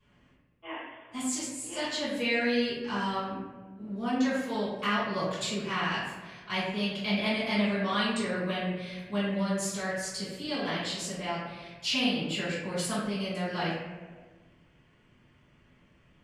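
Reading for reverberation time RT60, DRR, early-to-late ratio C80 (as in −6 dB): 1.4 s, −13.0 dB, 2.5 dB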